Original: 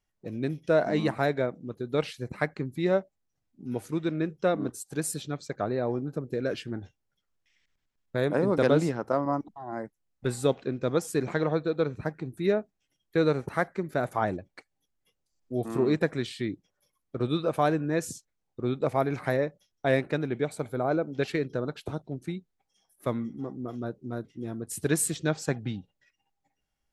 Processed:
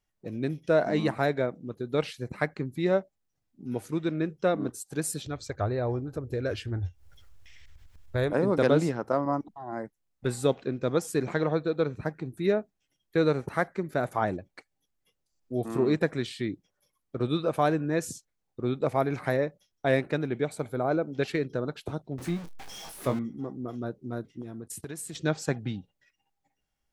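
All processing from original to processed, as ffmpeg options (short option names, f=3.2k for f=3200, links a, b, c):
-filter_complex "[0:a]asettb=1/sr,asplit=3[a][b][c];[a]atrim=end=5.264[d];[b]atrim=start=5.26:end=8.33,asetpts=PTS-STARTPTS,afade=t=in:d=0.004:c=qsin,afade=t=out:st=3.066:d=0.004:c=qsin,lowshelf=f=120:t=q:w=3:g=12,acompressor=mode=upward:threshold=-35dB:ratio=2.5:attack=3.2:release=140:knee=2.83:detection=peak[e];[c]atrim=start=8.326[f];[d][e]acrossfade=d=0.004:c1=hsin:c2=qsin[g];[g][f]acrossfade=d=0.004:c1=qsin:c2=hsin,asettb=1/sr,asplit=3[h][i][j];[h]atrim=end=22.184[k];[i]atrim=start=22.18:end=23.19,asetpts=PTS-STARTPTS,afade=t=in:d=0.004:c=qsin,afade=t=out:st=1.006:d=0.004:c=qsin,aeval=exprs='val(0)+0.5*0.0158*sgn(val(0))':c=same,highshelf=f=9.2k:g=-8,asplit=2[l][m];[m]adelay=23,volume=-7.5dB[n];[l][n]amix=inputs=2:normalize=0,atrim=end_sample=44541[o];[j]atrim=start=23.186[p];[k][o]acrossfade=d=0.004:c1=hsin:c2=qsin[q];[q][p]acrossfade=d=0.004:c1=qsin:c2=hsin,asettb=1/sr,asplit=3[r][s][t];[r]atrim=end=24.414[u];[s]atrim=start=24.41:end=25.15,asetpts=PTS-STARTPTS,afade=t=in:d=0.004:c=qsin,afade=t=out:st=0.736:d=0.004:c=qsin,agate=range=-16dB:threshold=-45dB:ratio=16:release=100:detection=peak,acompressor=threshold=-35dB:ratio=6:attack=3.2:release=140:knee=1:detection=peak[v];[t]atrim=start=25.146[w];[u][v]acrossfade=d=0.004:c1=hsin:c2=qsin[x];[x][w]acrossfade=d=0.004:c1=qsin:c2=hsin"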